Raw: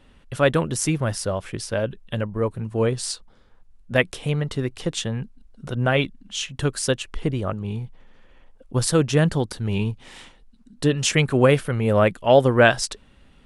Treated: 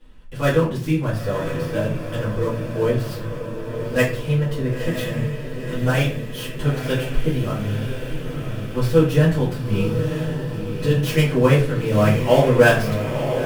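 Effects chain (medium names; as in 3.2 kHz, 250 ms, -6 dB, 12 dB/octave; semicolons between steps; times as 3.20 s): dead-time distortion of 0.079 ms; vibrato 4.2 Hz 11 cents; on a send: echo that smears into a reverb 986 ms, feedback 62%, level -7 dB; on the sum: simulated room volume 34 m³, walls mixed, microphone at 1.8 m; trim -11 dB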